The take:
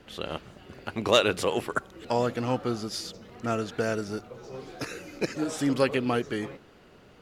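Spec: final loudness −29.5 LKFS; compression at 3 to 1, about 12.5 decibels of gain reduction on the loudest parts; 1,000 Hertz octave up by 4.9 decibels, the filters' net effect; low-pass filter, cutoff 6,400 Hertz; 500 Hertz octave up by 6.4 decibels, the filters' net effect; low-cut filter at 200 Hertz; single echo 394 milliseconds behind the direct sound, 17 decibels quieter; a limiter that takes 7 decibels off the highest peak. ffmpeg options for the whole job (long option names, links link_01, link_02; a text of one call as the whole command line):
ffmpeg -i in.wav -af "highpass=200,lowpass=6400,equalizer=frequency=500:width_type=o:gain=6.5,equalizer=frequency=1000:width_type=o:gain=4.5,acompressor=threshold=-28dB:ratio=3,alimiter=limit=-21dB:level=0:latency=1,aecho=1:1:394:0.141,volume=5dB" out.wav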